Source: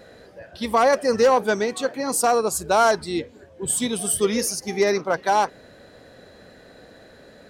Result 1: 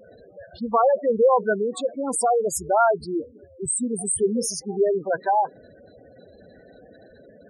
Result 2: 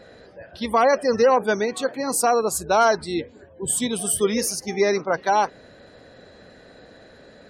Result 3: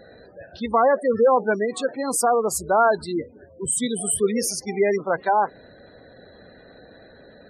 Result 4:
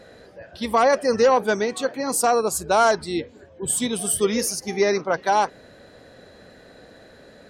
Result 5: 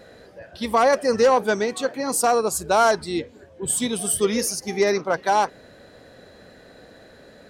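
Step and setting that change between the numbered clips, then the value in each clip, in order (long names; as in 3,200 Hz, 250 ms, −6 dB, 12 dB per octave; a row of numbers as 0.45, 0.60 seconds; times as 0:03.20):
gate on every frequency bin, under each frame's peak: −10, −35, −20, −45, −60 decibels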